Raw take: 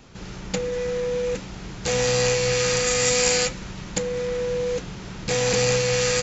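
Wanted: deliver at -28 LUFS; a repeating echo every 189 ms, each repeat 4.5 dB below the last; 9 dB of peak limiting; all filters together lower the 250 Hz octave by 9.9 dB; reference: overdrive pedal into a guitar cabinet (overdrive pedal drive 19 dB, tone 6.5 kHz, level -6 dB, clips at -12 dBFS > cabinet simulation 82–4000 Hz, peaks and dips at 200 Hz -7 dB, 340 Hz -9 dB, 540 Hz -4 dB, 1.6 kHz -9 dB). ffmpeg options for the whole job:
-filter_complex "[0:a]equalizer=f=250:t=o:g=-8.5,alimiter=limit=0.158:level=0:latency=1,aecho=1:1:189|378|567|756|945|1134|1323|1512|1701:0.596|0.357|0.214|0.129|0.0772|0.0463|0.0278|0.0167|0.01,asplit=2[s0][s1];[s1]highpass=f=720:p=1,volume=8.91,asoftclip=type=tanh:threshold=0.251[s2];[s0][s2]amix=inputs=2:normalize=0,lowpass=f=6500:p=1,volume=0.501,highpass=82,equalizer=f=200:t=q:w=4:g=-7,equalizer=f=340:t=q:w=4:g=-9,equalizer=f=540:t=q:w=4:g=-4,equalizer=f=1600:t=q:w=4:g=-9,lowpass=f=4000:w=0.5412,lowpass=f=4000:w=1.3066,volume=0.562"

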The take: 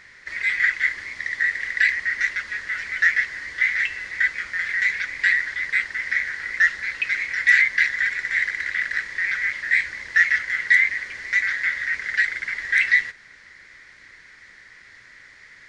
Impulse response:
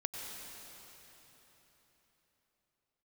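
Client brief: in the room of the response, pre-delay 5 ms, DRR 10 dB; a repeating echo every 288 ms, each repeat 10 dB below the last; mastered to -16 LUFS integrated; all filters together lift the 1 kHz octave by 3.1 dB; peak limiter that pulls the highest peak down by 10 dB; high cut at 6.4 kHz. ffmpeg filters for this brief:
-filter_complex "[0:a]lowpass=6400,equalizer=f=1000:t=o:g=5,alimiter=limit=0.224:level=0:latency=1,aecho=1:1:288|576|864|1152:0.316|0.101|0.0324|0.0104,asplit=2[s0][s1];[1:a]atrim=start_sample=2205,adelay=5[s2];[s1][s2]afir=irnorm=-1:irlink=0,volume=0.266[s3];[s0][s3]amix=inputs=2:normalize=0,volume=2"

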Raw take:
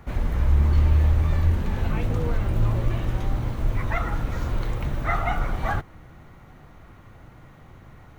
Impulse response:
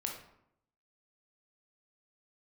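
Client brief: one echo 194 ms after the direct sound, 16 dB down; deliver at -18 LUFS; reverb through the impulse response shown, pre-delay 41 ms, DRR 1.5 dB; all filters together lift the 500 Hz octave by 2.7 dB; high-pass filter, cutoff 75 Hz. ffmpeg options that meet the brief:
-filter_complex "[0:a]highpass=75,equalizer=f=500:t=o:g=3.5,aecho=1:1:194:0.158,asplit=2[s0][s1];[1:a]atrim=start_sample=2205,adelay=41[s2];[s1][s2]afir=irnorm=-1:irlink=0,volume=0.75[s3];[s0][s3]amix=inputs=2:normalize=0,volume=2.11"

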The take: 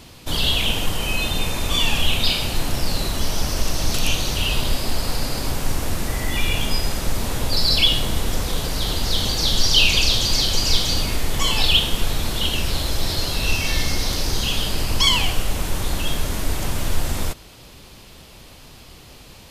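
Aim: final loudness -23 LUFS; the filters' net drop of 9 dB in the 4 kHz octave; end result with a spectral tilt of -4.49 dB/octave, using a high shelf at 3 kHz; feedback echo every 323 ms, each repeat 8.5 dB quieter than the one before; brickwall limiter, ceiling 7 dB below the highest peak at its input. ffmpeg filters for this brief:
-af "highshelf=f=3000:g=-9,equalizer=f=4000:t=o:g=-5,alimiter=limit=0.224:level=0:latency=1,aecho=1:1:323|646|969|1292:0.376|0.143|0.0543|0.0206,volume=1.5"

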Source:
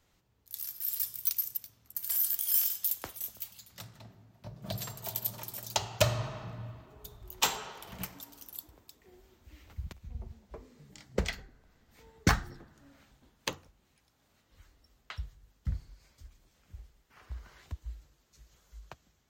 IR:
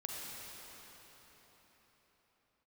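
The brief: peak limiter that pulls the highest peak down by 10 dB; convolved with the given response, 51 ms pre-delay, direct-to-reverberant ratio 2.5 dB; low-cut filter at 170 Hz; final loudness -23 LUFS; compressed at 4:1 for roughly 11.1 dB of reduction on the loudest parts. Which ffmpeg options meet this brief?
-filter_complex "[0:a]highpass=170,acompressor=threshold=0.0158:ratio=4,alimiter=level_in=1.68:limit=0.0631:level=0:latency=1,volume=0.596,asplit=2[s0][s1];[1:a]atrim=start_sample=2205,adelay=51[s2];[s1][s2]afir=irnorm=-1:irlink=0,volume=0.668[s3];[s0][s3]amix=inputs=2:normalize=0,volume=10"

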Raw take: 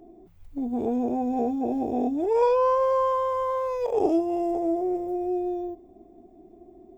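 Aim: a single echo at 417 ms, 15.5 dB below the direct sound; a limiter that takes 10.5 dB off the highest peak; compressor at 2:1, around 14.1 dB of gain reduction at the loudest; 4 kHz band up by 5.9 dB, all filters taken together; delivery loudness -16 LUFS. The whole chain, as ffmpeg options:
-af "equalizer=f=4000:t=o:g=8,acompressor=threshold=0.00631:ratio=2,alimiter=level_in=3.76:limit=0.0631:level=0:latency=1,volume=0.266,aecho=1:1:417:0.168,volume=21.1"

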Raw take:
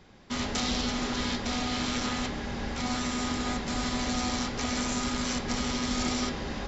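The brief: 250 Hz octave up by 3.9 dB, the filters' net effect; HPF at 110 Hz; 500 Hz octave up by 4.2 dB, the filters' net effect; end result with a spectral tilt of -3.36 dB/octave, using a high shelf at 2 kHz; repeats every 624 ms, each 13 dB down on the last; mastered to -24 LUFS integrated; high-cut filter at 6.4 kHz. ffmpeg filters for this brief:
-af "highpass=110,lowpass=6400,equalizer=f=250:t=o:g=3.5,equalizer=f=500:t=o:g=4,highshelf=f=2000:g=3.5,aecho=1:1:624|1248|1872:0.224|0.0493|0.0108,volume=1.5"

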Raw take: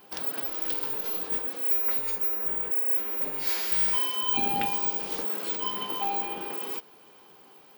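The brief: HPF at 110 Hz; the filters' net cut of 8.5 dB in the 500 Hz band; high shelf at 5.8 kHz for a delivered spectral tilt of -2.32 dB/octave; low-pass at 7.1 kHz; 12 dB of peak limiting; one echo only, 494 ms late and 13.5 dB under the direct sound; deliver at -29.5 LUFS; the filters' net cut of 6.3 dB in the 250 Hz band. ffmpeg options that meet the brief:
-af "highpass=110,lowpass=7100,equalizer=f=250:t=o:g=-5,equalizer=f=500:t=o:g=-9,highshelf=f=5800:g=7,alimiter=level_in=1.58:limit=0.0631:level=0:latency=1,volume=0.631,aecho=1:1:494:0.211,volume=2.66"

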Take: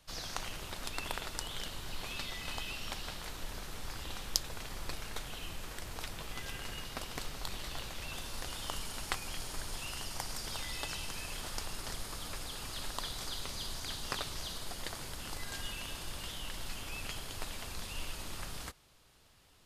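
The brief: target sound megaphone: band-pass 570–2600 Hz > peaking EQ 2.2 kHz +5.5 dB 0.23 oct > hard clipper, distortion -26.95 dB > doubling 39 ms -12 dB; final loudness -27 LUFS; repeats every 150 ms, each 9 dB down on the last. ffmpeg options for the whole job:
-filter_complex "[0:a]highpass=570,lowpass=2600,equalizer=f=2200:t=o:w=0.23:g=5.5,aecho=1:1:150|300|450|600:0.355|0.124|0.0435|0.0152,asoftclip=type=hard:threshold=0.119,asplit=2[s0][s1];[s1]adelay=39,volume=0.251[s2];[s0][s2]amix=inputs=2:normalize=0,volume=7.94"

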